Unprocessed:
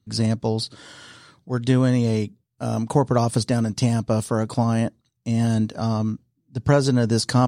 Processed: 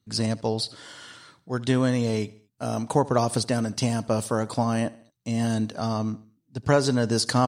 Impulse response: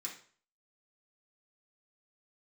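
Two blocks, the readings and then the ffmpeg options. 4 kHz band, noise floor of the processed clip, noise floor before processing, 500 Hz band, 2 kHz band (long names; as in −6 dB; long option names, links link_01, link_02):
0.0 dB, −73 dBFS, −73 dBFS, −1.5 dB, 0.0 dB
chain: -af "lowshelf=frequency=260:gain=-7.5,aecho=1:1:74|148|222:0.0891|0.0419|0.0197"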